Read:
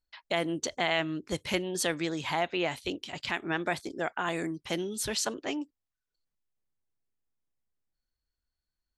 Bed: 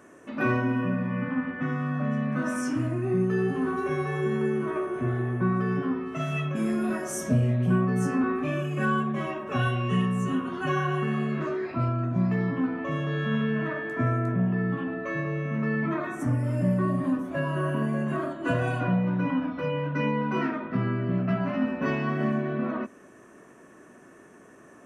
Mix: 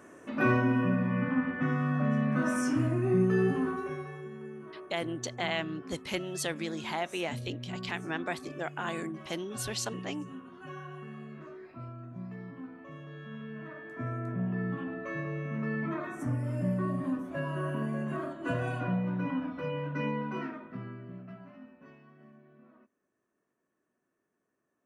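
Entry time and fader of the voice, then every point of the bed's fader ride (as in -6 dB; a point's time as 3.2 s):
4.60 s, -4.0 dB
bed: 3.51 s -0.5 dB
4.3 s -17 dB
13.35 s -17 dB
14.59 s -6 dB
20.13 s -6 dB
22.09 s -30 dB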